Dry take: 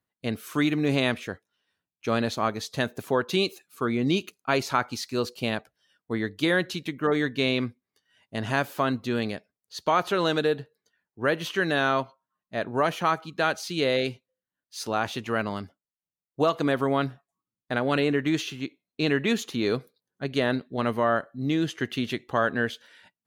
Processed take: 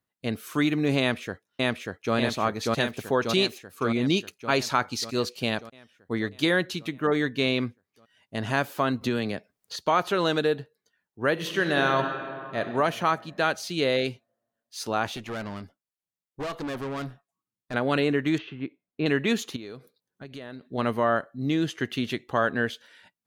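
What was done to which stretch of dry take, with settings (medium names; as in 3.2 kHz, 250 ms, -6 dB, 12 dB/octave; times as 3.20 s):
1.00–2.15 s: echo throw 590 ms, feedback 65%, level -0.5 dB
2.74–6.49 s: dynamic bell 5.3 kHz, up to +4 dB, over -44 dBFS, Q 0.8
9.01–9.76 s: three bands compressed up and down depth 100%
11.32–12.60 s: reverb throw, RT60 2.3 s, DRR 4.5 dB
15.16–17.74 s: valve stage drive 29 dB, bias 0.45
18.38–19.06 s: Bessel low-pass 1.9 kHz, order 4
19.56–20.67 s: compression 4:1, threshold -39 dBFS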